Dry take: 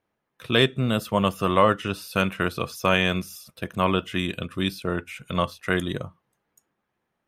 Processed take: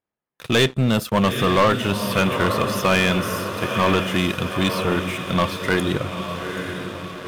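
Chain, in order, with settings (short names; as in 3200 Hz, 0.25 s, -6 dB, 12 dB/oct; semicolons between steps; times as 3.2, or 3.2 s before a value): diffused feedback echo 0.906 s, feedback 57%, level -9.5 dB; sample leveller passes 3; gain -4.5 dB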